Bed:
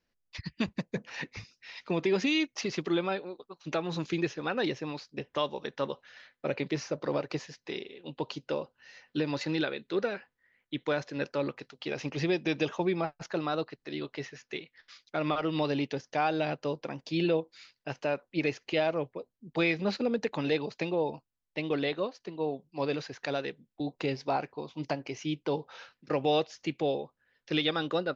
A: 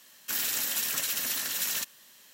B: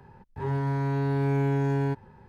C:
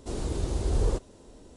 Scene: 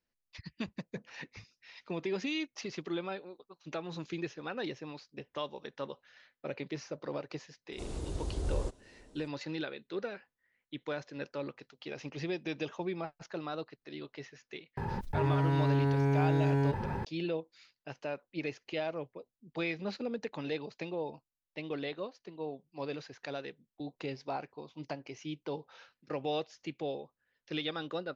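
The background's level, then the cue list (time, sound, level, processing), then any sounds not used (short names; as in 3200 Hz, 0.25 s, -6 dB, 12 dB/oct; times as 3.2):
bed -7.5 dB
7.72 add C -8 dB
14.77 add B -3.5 dB + fast leveller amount 70%
not used: A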